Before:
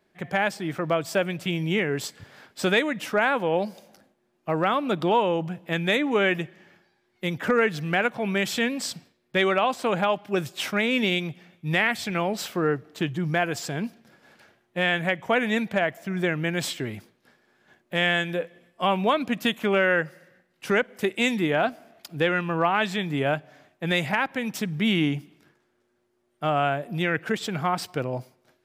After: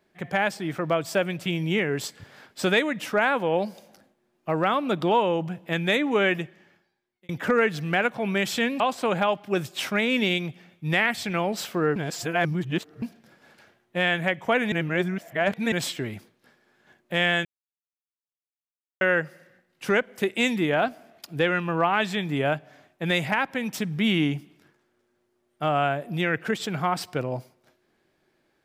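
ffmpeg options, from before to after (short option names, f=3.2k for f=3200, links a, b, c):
-filter_complex "[0:a]asplit=9[a][b][c][d][e][f][g][h][i];[a]atrim=end=7.29,asetpts=PTS-STARTPTS,afade=t=out:st=6.3:d=0.99[j];[b]atrim=start=7.29:end=8.802,asetpts=PTS-STARTPTS,afade=t=in:d=0.004:c=hsin[k];[c]atrim=start=9.608:end=12.772[l];[d]atrim=start=12.768:end=13.832,asetpts=PTS-STARTPTS,areverse[m];[e]atrim=start=13.828:end=15.532[n];[f]atrim=start=15.528:end=16.532,asetpts=PTS-STARTPTS,areverse[o];[g]atrim=start=16.528:end=18.26,asetpts=PTS-STARTPTS,afade=t=out:st=1.728:d=0.004:c=hsin[p];[h]atrim=start=18.26:end=19.82,asetpts=PTS-STARTPTS,volume=0[q];[i]atrim=start=19.82,asetpts=PTS-STARTPTS,afade=t=in:d=0.004:c=hsin[r];[j][k]concat=n=2:v=0:a=1[s];[s][l]acrossfade=d=0.004:c1=hsin:c2=hsin[t];[t][m]acrossfade=d=0.004:c1=hsin:c2=hsin[u];[u][n]acrossfade=d=0.004:c1=hsin:c2=hsin[v];[v][o]acrossfade=d=0.004:c1=hsin:c2=hsin[w];[p][q][r]concat=n=3:v=0:a=1[x];[w][x]acrossfade=d=0.004:c1=hsin:c2=hsin"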